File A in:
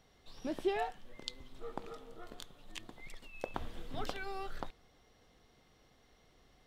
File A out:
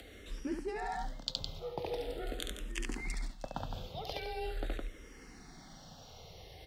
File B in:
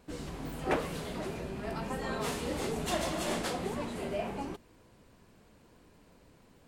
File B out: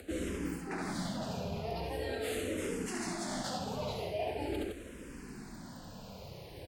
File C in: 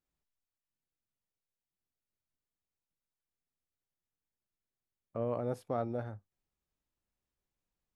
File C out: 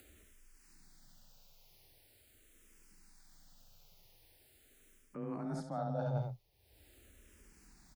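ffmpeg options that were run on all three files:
-filter_complex "[0:a]equalizer=f=4700:t=o:w=0.32:g=3,asplit=2[s0][s1];[s1]aecho=0:1:69.97|163.3:0.562|0.282[s2];[s0][s2]amix=inputs=2:normalize=0,afreqshift=21,areverse,acompressor=threshold=0.00562:ratio=12,areverse,equalizer=f=1100:t=o:w=0.44:g=-6.5,acompressor=mode=upward:threshold=0.001:ratio=2.5,asplit=2[s3][s4];[s4]afreqshift=-0.43[s5];[s3][s5]amix=inputs=2:normalize=1,volume=5.31"

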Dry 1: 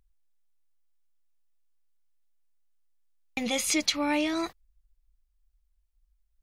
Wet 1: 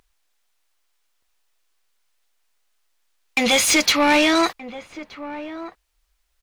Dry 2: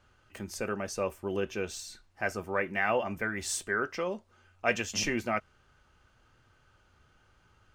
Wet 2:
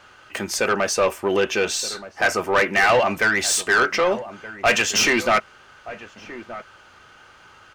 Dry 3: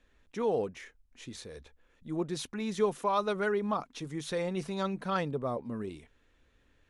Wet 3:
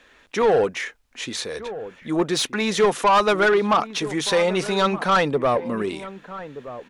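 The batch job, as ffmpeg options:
-filter_complex "[0:a]asplit=2[s0][s1];[s1]highpass=f=720:p=1,volume=14.1,asoftclip=type=tanh:threshold=0.299[s2];[s0][s2]amix=inputs=2:normalize=0,lowpass=f=5500:p=1,volume=0.501,asplit=2[s3][s4];[s4]adelay=1224,volume=0.2,highshelf=f=4000:g=-27.6[s5];[s3][s5]amix=inputs=2:normalize=0,volume=1.41"

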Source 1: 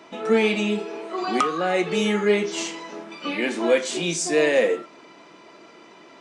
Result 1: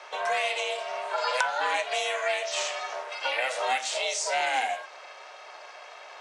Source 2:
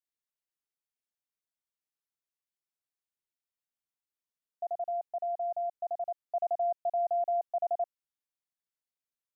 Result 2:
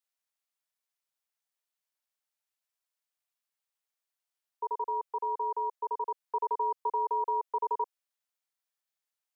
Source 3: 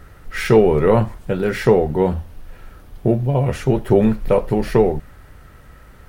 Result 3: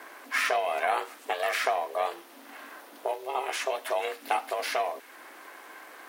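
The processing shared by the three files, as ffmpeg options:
-filter_complex "[0:a]aeval=exprs='val(0)*sin(2*PI*260*n/s)':c=same,acrossover=split=1700|6700[s0][s1][s2];[s0]acompressor=threshold=0.0282:ratio=4[s3];[s1]acompressor=threshold=0.0141:ratio=4[s4];[s2]acompressor=threshold=0.00355:ratio=4[s5];[s3][s4][s5]amix=inputs=3:normalize=0,highpass=f=550:w=0.5412,highpass=f=550:w=1.3066,volume=2.24"

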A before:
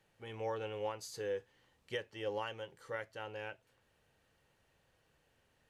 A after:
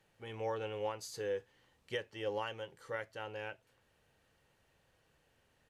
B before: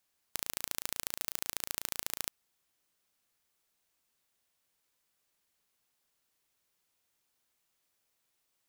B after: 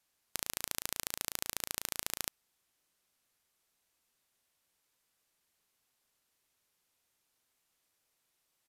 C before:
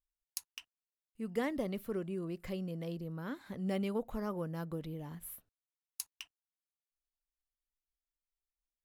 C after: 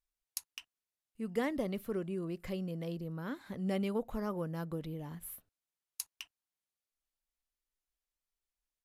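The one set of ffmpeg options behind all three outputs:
-af "aresample=32000,aresample=44100,volume=1.12"

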